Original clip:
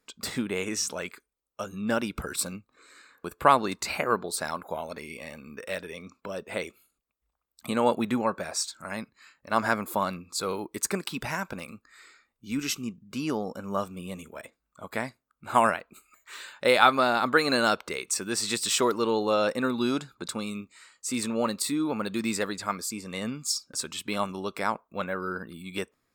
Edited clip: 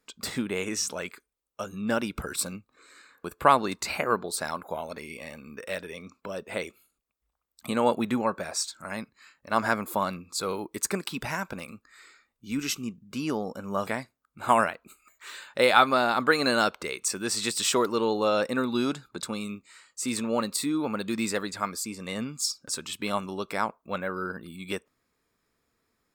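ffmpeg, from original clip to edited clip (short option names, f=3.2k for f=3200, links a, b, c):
-filter_complex "[0:a]asplit=2[a][b];[a]atrim=end=13.872[c];[b]atrim=start=14.928[d];[c][d]acrossfade=d=0.004:c1=hsin:c2=hsin"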